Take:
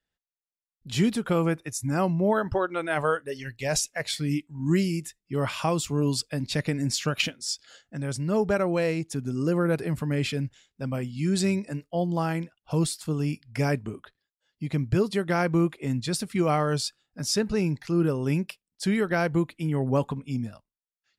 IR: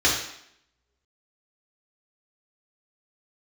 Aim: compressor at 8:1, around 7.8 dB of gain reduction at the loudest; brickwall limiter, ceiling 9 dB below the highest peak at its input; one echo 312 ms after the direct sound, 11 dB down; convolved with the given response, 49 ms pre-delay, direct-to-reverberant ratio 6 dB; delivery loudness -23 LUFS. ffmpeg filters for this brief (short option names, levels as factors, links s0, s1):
-filter_complex "[0:a]acompressor=threshold=0.0501:ratio=8,alimiter=level_in=1.06:limit=0.0631:level=0:latency=1,volume=0.944,aecho=1:1:312:0.282,asplit=2[s0][s1];[1:a]atrim=start_sample=2205,adelay=49[s2];[s1][s2]afir=irnorm=-1:irlink=0,volume=0.0708[s3];[s0][s3]amix=inputs=2:normalize=0,volume=3.16"